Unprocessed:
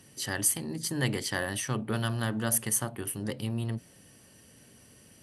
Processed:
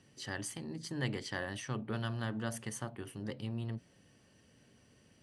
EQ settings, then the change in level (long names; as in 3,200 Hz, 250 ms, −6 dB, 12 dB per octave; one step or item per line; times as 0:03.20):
high-frequency loss of the air 120 metres
high-shelf EQ 7,400 Hz +7 dB
−6.5 dB